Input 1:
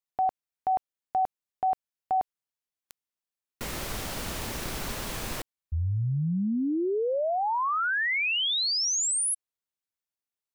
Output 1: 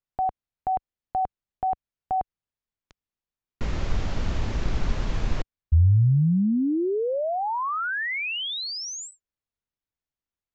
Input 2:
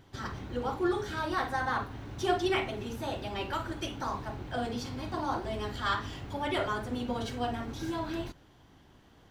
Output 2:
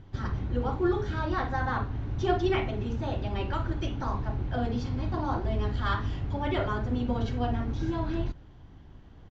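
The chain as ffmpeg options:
-af "aresample=16000,aresample=44100,aemphasis=mode=reproduction:type=bsi"

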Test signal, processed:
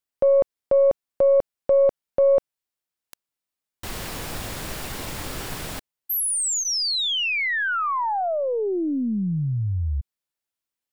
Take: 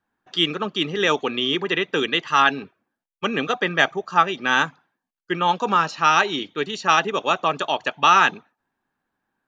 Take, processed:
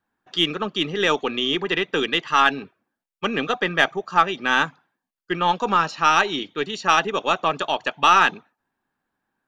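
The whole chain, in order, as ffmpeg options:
-af "aeval=exprs='0.891*(cos(1*acos(clip(val(0)/0.891,-1,1)))-cos(1*PI/2))+0.0141*(cos(3*acos(clip(val(0)/0.891,-1,1)))-cos(3*PI/2))+0.0141*(cos(8*acos(clip(val(0)/0.891,-1,1)))-cos(8*PI/2))':c=same,bandreject=f=6.2k:w=26"

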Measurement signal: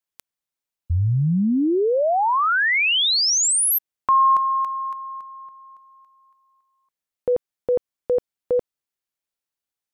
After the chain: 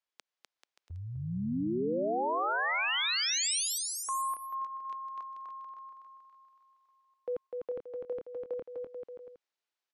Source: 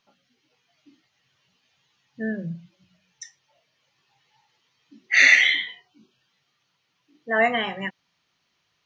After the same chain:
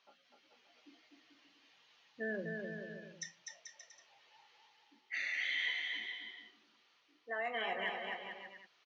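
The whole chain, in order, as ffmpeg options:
-filter_complex "[0:a]acrossover=split=310 6200:gain=0.0794 1 0.0794[a][b][c];[a][b][c]amix=inputs=3:normalize=0,areverse,acompressor=threshold=-30dB:ratio=5:attack=0.48:release=386:knee=1:detection=rms,areverse,alimiter=level_in=5.5dB:limit=-24dB:level=0:latency=1:release=135,volume=-5.5dB,aecho=1:1:250|437.5|578.1|683.6|762.7:0.631|0.398|0.251|0.158|0.1"

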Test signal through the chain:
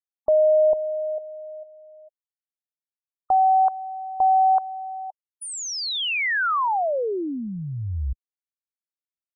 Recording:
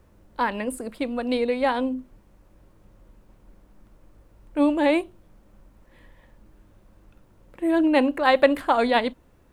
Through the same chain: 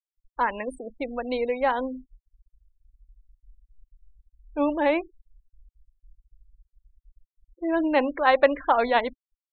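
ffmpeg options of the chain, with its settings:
-af "afftfilt=real='re*gte(hypot(re,im),0.0282)':imag='im*gte(hypot(re,im),0.0282)':win_size=1024:overlap=0.75,lowpass=f=1.6k:p=1,equalizer=f=170:w=0.47:g=-12,volume=3.5dB"

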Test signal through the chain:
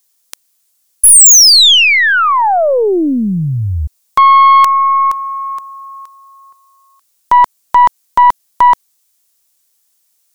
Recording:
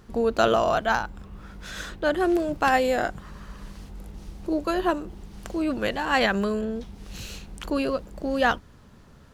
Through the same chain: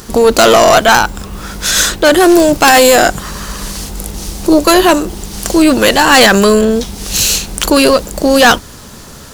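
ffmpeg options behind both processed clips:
-af "bass=f=250:g=-5,treble=f=4k:g=14,aeval=exprs='(tanh(5.62*val(0)+0.45)-tanh(0.45))/5.62':c=same,apsyclip=23.5dB,volume=-1.5dB"

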